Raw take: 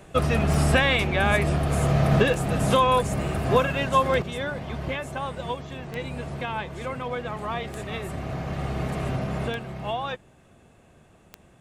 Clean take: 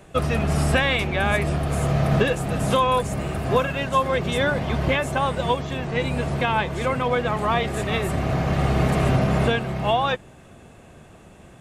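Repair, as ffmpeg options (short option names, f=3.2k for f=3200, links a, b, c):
-af "adeclick=t=4,asetnsamples=n=441:p=0,asendcmd='4.22 volume volume 8.5dB',volume=0dB"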